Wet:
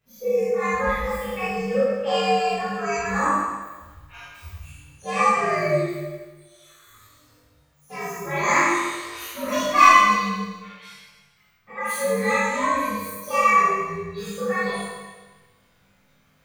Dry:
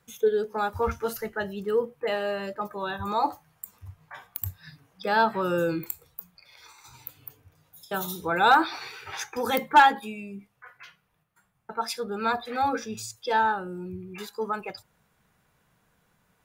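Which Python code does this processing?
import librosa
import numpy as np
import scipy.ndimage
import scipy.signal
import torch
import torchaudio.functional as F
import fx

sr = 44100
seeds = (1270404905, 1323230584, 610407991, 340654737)

y = fx.partial_stretch(x, sr, pct=122)
y = fx.rider(y, sr, range_db=5, speed_s=2.0)
y = fx.doubler(y, sr, ms=20.0, db=-3.0)
y = fx.rev_schroeder(y, sr, rt60_s=1.3, comb_ms=27, drr_db=-8.0)
y = F.gain(torch.from_numpy(y), -4.5).numpy()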